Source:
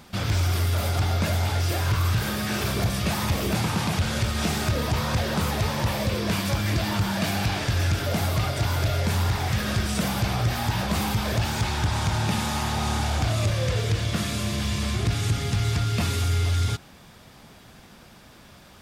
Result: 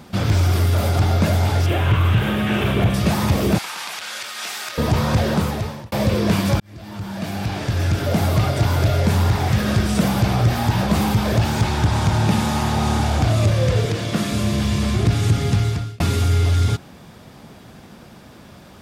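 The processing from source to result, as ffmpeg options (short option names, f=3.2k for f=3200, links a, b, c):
-filter_complex "[0:a]asettb=1/sr,asplit=3[a][b][c];[a]atrim=end=1.664[d];[b]atrim=start=1.66:end=2.94,asetpts=PTS-STARTPTS,afade=t=in:d=0.004:c=qsin,afade=t=out:st=1.276:d=0.004:c=qsin,highshelf=f=3.8k:t=q:w=3:g=-7.5[e];[c]atrim=start=2.936[f];[d][e]acrossfade=d=0.004:c1=hsin:c2=qsin[g];[g][f]acrossfade=d=0.004:c1=qsin:c2=hsin,asettb=1/sr,asplit=3[h][i][j];[h]atrim=end=3.584[k];[i]atrim=start=3.58:end=4.78,asetpts=PTS-STARTPTS,afade=t=in:d=0.004:c=qsin,afade=t=out:st=1.196:d=0.004:c=qsin,highpass=1.4k[l];[j]atrim=start=4.776[m];[k][l]acrossfade=d=0.004:c1=hsin:c2=qsin[n];[n][m]acrossfade=d=0.004:c1=qsin:c2=hsin,asettb=1/sr,asplit=3[o][p][q];[o]atrim=end=13.854[r];[p]atrim=start=13.85:end=14.32,asetpts=PTS-STARTPTS,afade=t=in:d=0.004:c=qsin,afade=t=out:st=0.466:d=0.004:c=qsin,highpass=160[s];[q]atrim=start=14.316[t];[r][s]acrossfade=d=0.004:c1=hsin:c2=qsin[u];[u][t]acrossfade=d=0.004:c1=qsin:c2=hsin,asplit=4[v][w][x][y];[v]atrim=end=5.92,asetpts=PTS-STARTPTS,afade=t=out:st=5.28:d=0.64[z];[w]atrim=start=5.92:end=6.6,asetpts=PTS-STARTPTS,afade=t=in:d=0.004:c=hsin,afade=t=out:st=0.676:d=0.004:c=hsin[aa];[x]atrim=start=6.6:end=16,asetpts=PTS-STARTPTS,afade=t=in:d=1.72,afade=t=out:st=8.95:d=0.45[ab];[y]atrim=start=16,asetpts=PTS-STARTPTS,afade=t=in:d=0.004:c=hsin[ac];[z][aa][ab][ac]concat=n=4:v=0:a=1,highpass=f=110:p=1,tiltshelf=f=790:g=4.5,volume=6dB"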